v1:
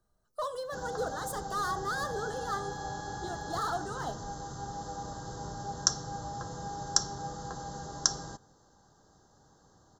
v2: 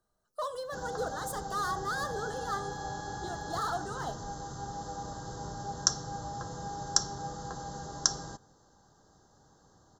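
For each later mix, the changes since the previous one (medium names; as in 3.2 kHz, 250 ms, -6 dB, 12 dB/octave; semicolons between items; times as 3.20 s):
speech: add bass shelf 180 Hz -8.5 dB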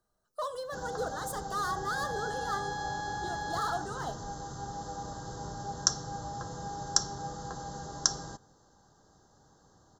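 second sound +6.5 dB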